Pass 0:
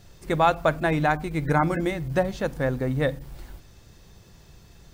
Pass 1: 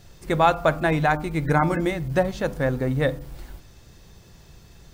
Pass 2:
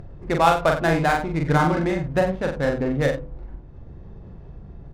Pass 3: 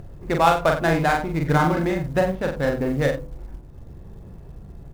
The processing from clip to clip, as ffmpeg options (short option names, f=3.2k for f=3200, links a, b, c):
-af "bandreject=f=99.97:t=h:w=4,bandreject=f=199.94:t=h:w=4,bandreject=f=299.91:t=h:w=4,bandreject=f=399.88:t=h:w=4,bandreject=f=499.85:t=h:w=4,bandreject=f=599.82:t=h:w=4,bandreject=f=699.79:t=h:w=4,bandreject=f=799.76:t=h:w=4,bandreject=f=899.73:t=h:w=4,bandreject=f=999.7:t=h:w=4,bandreject=f=1.09967k:t=h:w=4,bandreject=f=1.19964k:t=h:w=4,bandreject=f=1.29961k:t=h:w=4,bandreject=f=1.39958k:t=h:w=4,volume=2dB"
-filter_complex "[0:a]adynamicsmooth=sensitivity=3:basefreq=730,asplit=2[a][b];[b]aecho=0:1:42|90:0.668|0.266[c];[a][c]amix=inputs=2:normalize=0,acompressor=mode=upward:threshold=-30dB:ratio=2.5"
-af "acrusher=bits=8:mode=log:mix=0:aa=0.000001"